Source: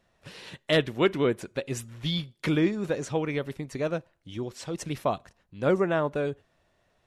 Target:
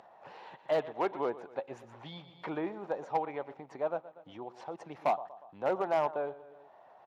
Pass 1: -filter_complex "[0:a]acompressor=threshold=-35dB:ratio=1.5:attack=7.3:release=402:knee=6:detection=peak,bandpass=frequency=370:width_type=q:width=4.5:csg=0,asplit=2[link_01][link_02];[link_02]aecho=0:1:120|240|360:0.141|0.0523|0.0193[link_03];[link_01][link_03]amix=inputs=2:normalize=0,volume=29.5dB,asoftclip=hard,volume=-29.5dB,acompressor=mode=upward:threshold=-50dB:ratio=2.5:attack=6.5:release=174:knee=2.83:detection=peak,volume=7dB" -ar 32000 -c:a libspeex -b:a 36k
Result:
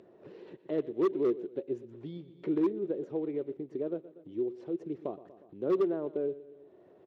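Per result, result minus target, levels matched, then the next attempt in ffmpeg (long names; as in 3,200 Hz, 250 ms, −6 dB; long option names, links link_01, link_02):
1,000 Hz band −14.5 dB; downward compressor: peak gain reduction +7 dB
-filter_complex "[0:a]acompressor=threshold=-35dB:ratio=1.5:attack=7.3:release=402:knee=6:detection=peak,bandpass=frequency=820:width_type=q:width=4.5:csg=0,asplit=2[link_01][link_02];[link_02]aecho=0:1:120|240|360:0.141|0.0523|0.0193[link_03];[link_01][link_03]amix=inputs=2:normalize=0,volume=29.5dB,asoftclip=hard,volume=-29.5dB,acompressor=mode=upward:threshold=-50dB:ratio=2.5:attack=6.5:release=174:knee=2.83:detection=peak,volume=7dB" -ar 32000 -c:a libspeex -b:a 36k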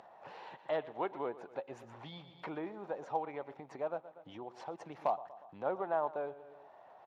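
downward compressor: peak gain reduction +7 dB
-filter_complex "[0:a]bandpass=frequency=820:width_type=q:width=4.5:csg=0,asplit=2[link_01][link_02];[link_02]aecho=0:1:120|240|360:0.141|0.0523|0.0193[link_03];[link_01][link_03]amix=inputs=2:normalize=0,volume=29.5dB,asoftclip=hard,volume=-29.5dB,acompressor=mode=upward:threshold=-50dB:ratio=2.5:attack=6.5:release=174:knee=2.83:detection=peak,volume=7dB" -ar 32000 -c:a libspeex -b:a 36k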